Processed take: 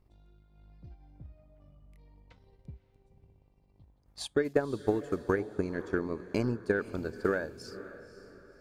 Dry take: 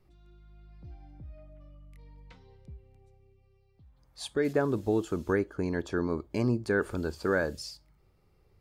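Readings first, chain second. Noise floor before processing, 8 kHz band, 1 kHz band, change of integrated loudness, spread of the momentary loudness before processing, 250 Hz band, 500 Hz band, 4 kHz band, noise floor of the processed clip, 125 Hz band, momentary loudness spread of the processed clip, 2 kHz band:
-66 dBFS, -3.0 dB, -2.0 dB, -2.0 dB, 21 LU, -3.0 dB, -1.0 dB, -2.5 dB, -67 dBFS, -4.0 dB, 21 LU, -2.5 dB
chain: buzz 50 Hz, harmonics 21, -63 dBFS -6 dB/oct; transient shaper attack +10 dB, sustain -6 dB; diffused feedback echo 0.53 s, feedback 41%, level -14.5 dB; gain -6.5 dB

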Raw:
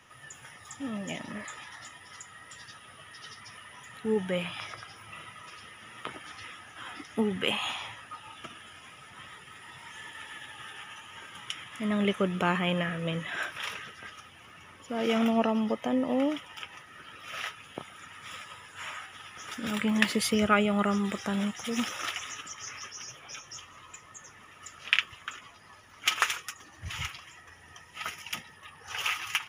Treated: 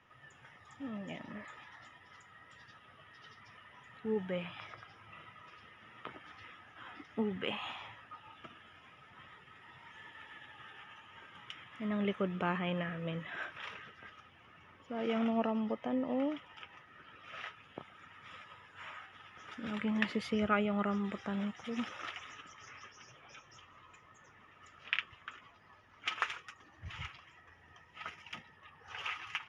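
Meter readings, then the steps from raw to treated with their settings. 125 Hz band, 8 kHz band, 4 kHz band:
-6.5 dB, under -20 dB, -11.5 dB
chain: Bessel low-pass 2500 Hz, order 2; gain -6.5 dB

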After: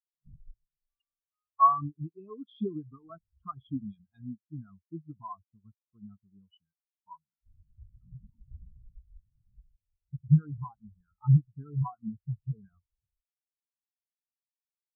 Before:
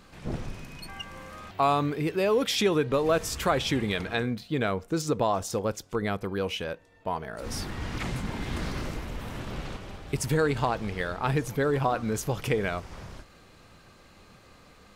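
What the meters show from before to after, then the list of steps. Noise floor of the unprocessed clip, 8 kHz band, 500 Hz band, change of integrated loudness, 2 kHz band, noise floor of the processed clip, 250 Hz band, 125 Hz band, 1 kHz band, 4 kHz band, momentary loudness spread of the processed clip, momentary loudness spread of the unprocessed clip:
-55 dBFS, under -40 dB, -22.0 dB, -1.0 dB, under -40 dB, under -85 dBFS, -6.5 dB, +1.0 dB, -2.0 dB, under -30 dB, 22 LU, 15 LU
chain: fixed phaser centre 2000 Hz, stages 6; spectral expander 4:1; gain +3.5 dB

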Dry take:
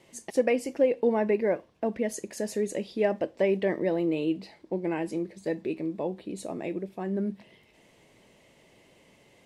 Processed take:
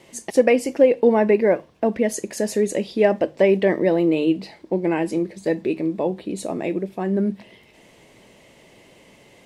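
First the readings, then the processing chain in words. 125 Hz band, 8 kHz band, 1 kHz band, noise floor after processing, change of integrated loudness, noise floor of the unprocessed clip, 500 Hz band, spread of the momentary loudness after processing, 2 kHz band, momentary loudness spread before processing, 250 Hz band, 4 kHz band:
+8.5 dB, +8.5 dB, +8.5 dB, -52 dBFS, +8.5 dB, -61 dBFS, +8.5 dB, 9 LU, +8.5 dB, 9 LU, +8.5 dB, +8.5 dB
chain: notches 50/100/150 Hz; gain +8.5 dB

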